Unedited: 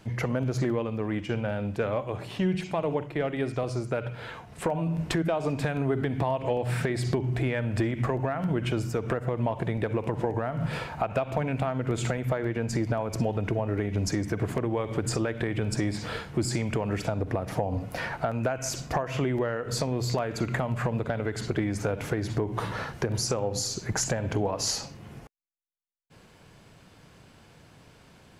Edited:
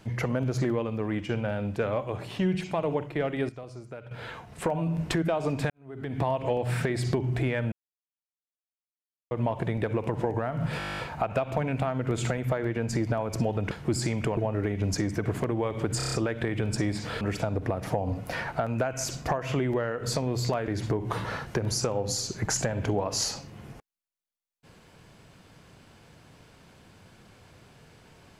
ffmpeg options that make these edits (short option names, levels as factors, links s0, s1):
-filter_complex "[0:a]asplit=25[s0][s1][s2][s3][s4][s5][s6][s7][s8][s9][s10][s11][s12][s13][s14][s15][s16][s17][s18][s19][s20][s21][s22][s23][s24];[s0]atrim=end=3.492[s25];[s1]atrim=start=3.488:end=4.112,asetpts=PTS-STARTPTS,volume=0.251[s26];[s2]atrim=start=4.108:end=5.7,asetpts=PTS-STARTPTS,afade=t=out:st=1.588:d=0.004:c=hsin[s27];[s3]atrim=start=5.7:end=7.72,asetpts=PTS-STARTPTS,afade=t=in:d=0.52:c=qua,afade=t=out:st=2.016:d=0.004:c=hsin[s28];[s4]atrim=start=7.72:end=9.31,asetpts=PTS-STARTPTS,volume=0[s29];[s5]atrim=start=9.31:end=10.802,asetpts=PTS-STARTPTS,afade=t=in:d=0.004:c=hsin[s30];[s6]atrim=start=10.778:end=10.802[s31];[s7]atrim=start=10.778:end=10.802[s32];[s8]atrim=start=10.778:end=10.802[s33];[s9]atrim=start=10.778:end=10.802[s34];[s10]atrim=start=10.778:end=10.802[s35];[s11]atrim=start=10.778:end=10.802[s36];[s12]atrim=start=10.778:end=10.802[s37];[s13]atrim=start=10.778:end=10.802[s38];[s14]atrim=start=10.778:end=10.802[s39];[s15]atrim=start=10.778:end=13.512[s40];[s16]atrim=start=16.198:end=16.862[s41];[s17]atrim=start=13.508:end=15.142[s42];[s18]atrim=start=15.108:end=15.142[s43];[s19]atrim=start=15.108:end=15.142[s44];[s20]atrim=start=15.108:end=15.142[s45];[s21]atrim=start=15.108:end=15.142[s46];[s22]atrim=start=15.108:end=16.202[s47];[s23]atrim=start=16.858:end=20.332[s48];[s24]atrim=start=22.148[s49];[s25][s26]acrossfade=d=0.004:c1=hsin:c2=hsin[s50];[s27][s28][s29][s30]concat=n=4:v=0:a=1[s51];[s50][s51]acrossfade=d=0.004:c1=hsin:c2=hsin[s52];[s52][s31]acrossfade=d=0.004:c1=hsin:c2=hsin[s53];[s53][s32]acrossfade=d=0.004:c1=hsin:c2=hsin[s54];[s54][s33]acrossfade=d=0.004:c1=hsin:c2=hsin[s55];[s55][s34]acrossfade=d=0.004:c1=hsin:c2=hsin[s56];[s56][s35]acrossfade=d=0.004:c1=hsin:c2=hsin[s57];[s57][s36]acrossfade=d=0.004:c1=hsin:c2=hsin[s58];[s58][s37]acrossfade=d=0.004:c1=hsin:c2=hsin[s59];[s59][s38]acrossfade=d=0.004:c1=hsin:c2=hsin[s60];[s60][s39]acrossfade=d=0.004:c1=hsin:c2=hsin[s61];[s61][s40]acrossfade=d=0.004:c1=hsin:c2=hsin[s62];[s62][s41]acrossfade=d=0.004:c1=hsin:c2=hsin[s63];[s63][s42]acrossfade=d=0.004:c1=hsin:c2=hsin[s64];[s64][s43]acrossfade=d=0.004:c1=hsin:c2=hsin[s65];[s65][s44]acrossfade=d=0.004:c1=hsin:c2=hsin[s66];[s66][s45]acrossfade=d=0.004:c1=hsin:c2=hsin[s67];[s67][s46]acrossfade=d=0.004:c1=hsin:c2=hsin[s68];[s68][s47]acrossfade=d=0.004:c1=hsin:c2=hsin[s69];[s69][s48]acrossfade=d=0.004:c1=hsin:c2=hsin[s70];[s70][s49]acrossfade=d=0.004:c1=hsin:c2=hsin"